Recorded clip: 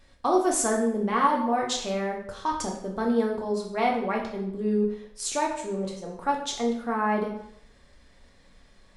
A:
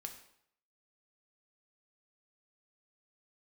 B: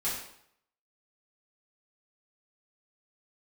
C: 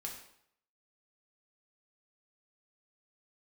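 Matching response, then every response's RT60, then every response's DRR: C; 0.70, 0.70, 0.70 seconds; 4.0, −10.5, −1.0 decibels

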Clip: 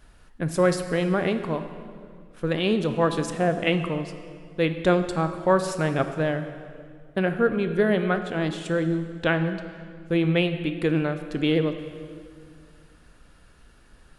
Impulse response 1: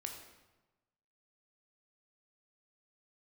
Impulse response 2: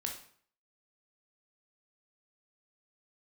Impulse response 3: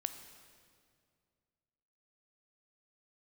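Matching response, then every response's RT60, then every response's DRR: 3; 1.1, 0.55, 2.2 seconds; 2.5, 1.0, 8.0 decibels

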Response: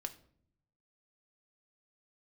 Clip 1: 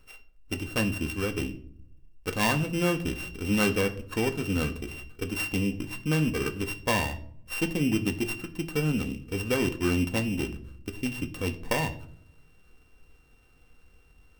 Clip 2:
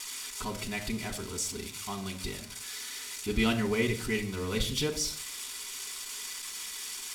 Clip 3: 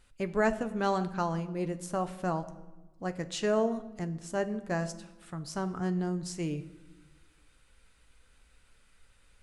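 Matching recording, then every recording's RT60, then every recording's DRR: 1; 0.60 s, non-exponential decay, 1.1 s; 6.0, −0.5, 9.0 decibels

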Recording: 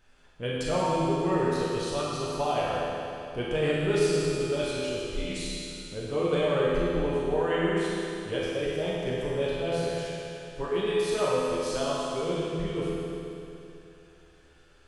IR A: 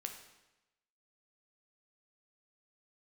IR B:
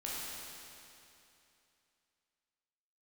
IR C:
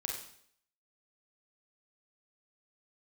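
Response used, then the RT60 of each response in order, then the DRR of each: B; 1.0, 2.8, 0.65 seconds; 4.0, −7.0, −0.5 decibels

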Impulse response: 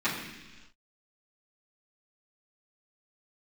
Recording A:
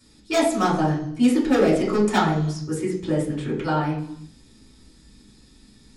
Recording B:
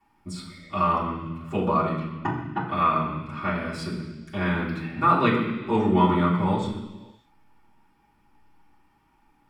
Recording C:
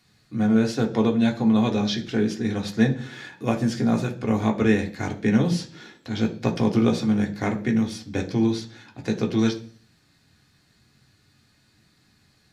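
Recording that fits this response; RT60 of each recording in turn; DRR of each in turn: B; non-exponential decay, 1.2 s, 0.45 s; −6.5, −13.0, 1.0 decibels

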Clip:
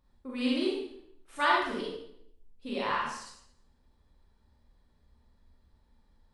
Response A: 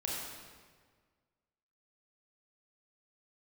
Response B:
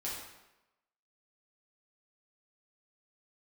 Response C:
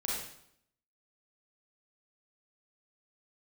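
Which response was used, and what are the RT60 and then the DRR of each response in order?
C; 1.6, 0.95, 0.70 seconds; −4.5, −7.0, −5.0 decibels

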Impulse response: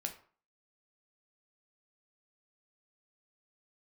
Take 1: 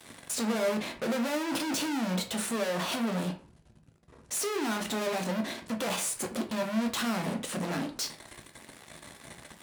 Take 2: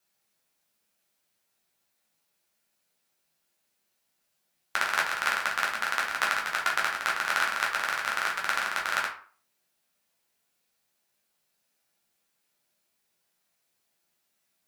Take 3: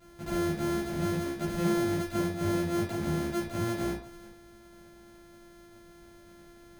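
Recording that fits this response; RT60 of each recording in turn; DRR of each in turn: 1; 0.45, 0.45, 0.45 seconds; 3.5, −3.0, −9.5 decibels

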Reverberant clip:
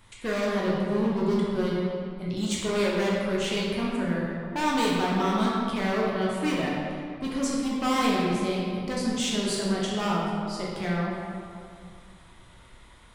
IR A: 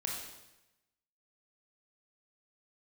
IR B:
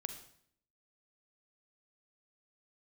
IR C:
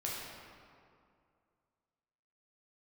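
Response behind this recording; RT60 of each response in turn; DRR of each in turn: C; 0.95, 0.65, 2.3 seconds; −2.0, 7.5, −5.5 decibels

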